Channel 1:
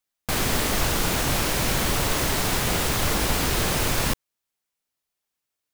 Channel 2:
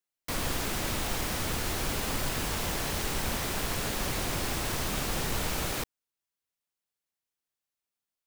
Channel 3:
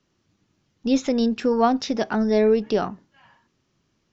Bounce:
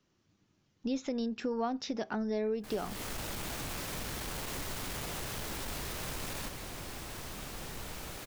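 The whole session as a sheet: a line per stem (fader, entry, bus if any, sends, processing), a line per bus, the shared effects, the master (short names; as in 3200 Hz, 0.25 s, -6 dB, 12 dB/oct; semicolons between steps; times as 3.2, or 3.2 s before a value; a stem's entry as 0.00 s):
-12.0 dB, 2.35 s, no send, limiter -21.5 dBFS, peak gain reduction 11 dB; AGC gain up to 10.5 dB; soft clip -25 dBFS, distortion -8 dB
-11.5 dB, 2.45 s, no send, upward compressor, threshold -41 dBFS
-4.5 dB, 0.00 s, no send, dry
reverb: off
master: compressor 2.5:1, threshold -35 dBFS, peak gain reduction 11 dB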